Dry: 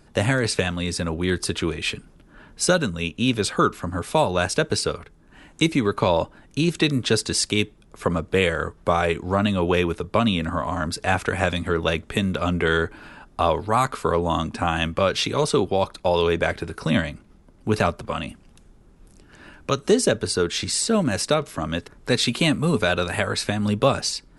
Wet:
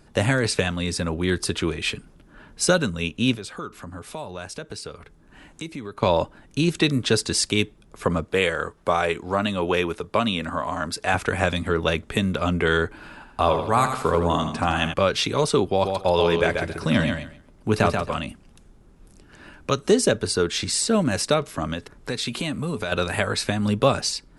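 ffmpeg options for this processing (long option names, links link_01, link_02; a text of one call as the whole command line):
ffmpeg -i in.wav -filter_complex "[0:a]asettb=1/sr,asplit=3[link_01][link_02][link_03];[link_01]atrim=end=3.354[link_04];[link_02]atrim=start=3.35:end=6.03,asetpts=PTS-STARTPTS,afade=type=in:duration=0.004:curve=qsin,afade=type=out:start_time=2.676:duration=0.004:curve=qsin,acompressor=threshold=-41dB:ratio=2:attack=3.2:release=140:knee=1:detection=peak[link_05];[link_03]atrim=start=6.026[link_06];[link_04][link_05]acrossfade=duration=0.004:curve1=hsin:curve2=qsin[link_07];[link_07][link_06]acrossfade=duration=0.004:curve1=qsin:curve2=hsin,asettb=1/sr,asplit=3[link_08][link_09][link_10];[link_08]atrim=end=8.244[link_11];[link_09]atrim=start=8.24:end=11.14,asetpts=PTS-STARTPTS,afade=type=in:duration=0.004:curve=qsin,afade=type=out:start_time=2.896:duration=0.004:curve=qsin,lowshelf=frequency=210:gain=-9[link_12];[link_10]atrim=start=11.136[link_13];[link_11][link_12]acrossfade=duration=0.004:curve1=hsin:curve2=qsin[link_14];[link_14][link_13]acrossfade=duration=0.004:curve1=qsin:curve2=hsin,asettb=1/sr,asplit=3[link_15][link_16][link_17];[link_15]atrim=end=12.924[link_18];[link_16]atrim=start=12.92:end=14.94,asetpts=PTS-STARTPTS,afade=type=in:duration=0.004:curve=qsin,afade=type=out:start_time=2.016:duration=0.004:curve=qsin,aecho=1:1:81|162|243|324|405:0.398|0.183|0.0842|0.0388|0.0178,atrim=end_sample=89082[link_19];[link_17]atrim=start=14.936[link_20];[link_18][link_19]acrossfade=duration=0.004:curve1=hsin:curve2=qsin[link_21];[link_21][link_20]acrossfade=duration=0.004:curve1=qsin:curve2=hsin,asettb=1/sr,asplit=3[link_22][link_23][link_24];[link_22]atrim=end=15.694[link_25];[link_23]atrim=start=15.69:end=18.2,asetpts=PTS-STARTPTS,afade=type=in:duration=0.004:curve=qsin,afade=type=out:start_time=2.506:duration=0.004:curve=qsin,aecho=1:1:135|270|405:0.562|0.101|0.0182,atrim=end_sample=110691[link_26];[link_24]atrim=start=18.196[link_27];[link_25][link_26]acrossfade=duration=0.004:curve1=hsin:curve2=qsin[link_28];[link_28][link_27]acrossfade=duration=0.004:curve1=qsin:curve2=hsin,asettb=1/sr,asplit=3[link_29][link_30][link_31];[link_29]atrim=end=21.734[link_32];[link_30]atrim=start=21.73:end=22.92,asetpts=PTS-STARTPTS,afade=type=in:duration=0.004:curve=qsin,afade=type=out:start_time=1.186:duration=0.004:curve=qsin,acompressor=threshold=-25dB:ratio=3:attack=3.2:release=140:knee=1:detection=peak[link_33];[link_31]atrim=start=22.916[link_34];[link_32][link_33]acrossfade=duration=0.004:curve1=hsin:curve2=qsin[link_35];[link_35][link_34]acrossfade=duration=0.004:curve1=qsin:curve2=hsin" out.wav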